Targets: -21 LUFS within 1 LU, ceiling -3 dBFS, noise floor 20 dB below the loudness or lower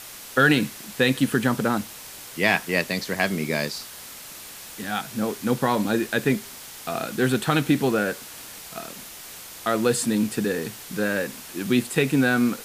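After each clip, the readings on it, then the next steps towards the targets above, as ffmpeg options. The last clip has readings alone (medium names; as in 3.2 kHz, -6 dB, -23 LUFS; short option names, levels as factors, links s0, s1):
noise floor -41 dBFS; noise floor target -44 dBFS; loudness -24.0 LUFS; peak level -4.0 dBFS; loudness target -21.0 LUFS
-> -af "afftdn=nr=6:nf=-41"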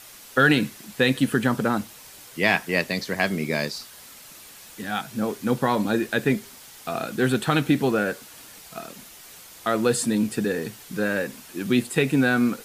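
noise floor -46 dBFS; loudness -24.0 LUFS; peak level -4.0 dBFS; loudness target -21.0 LUFS
-> -af "volume=1.41,alimiter=limit=0.708:level=0:latency=1"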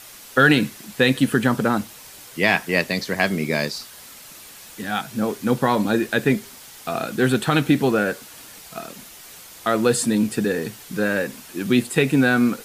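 loudness -21.0 LUFS; peak level -3.0 dBFS; noise floor -43 dBFS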